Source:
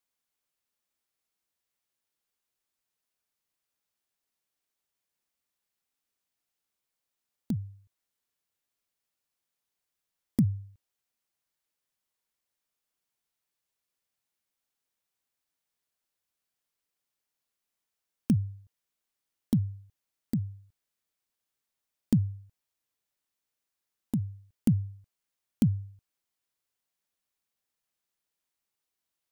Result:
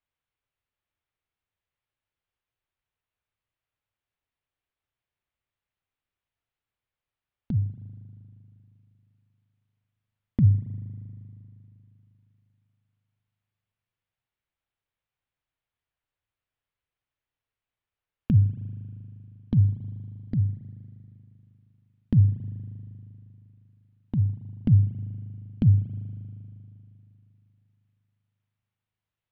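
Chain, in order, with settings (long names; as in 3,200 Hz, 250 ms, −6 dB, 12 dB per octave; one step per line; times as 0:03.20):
low-pass filter 3,300 Hz 24 dB per octave
low shelf with overshoot 150 Hz +9 dB, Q 1.5
convolution reverb RT60 3.1 s, pre-delay 39 ms, DRR 12 dB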